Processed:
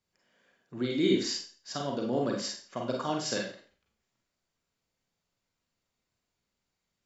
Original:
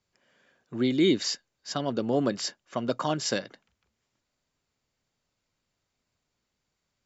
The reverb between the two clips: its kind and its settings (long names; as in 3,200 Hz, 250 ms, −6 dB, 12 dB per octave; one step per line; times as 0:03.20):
four-comb reverb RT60 0.41 s, combs from 33 ms, DRR 0 dB
level −6 dB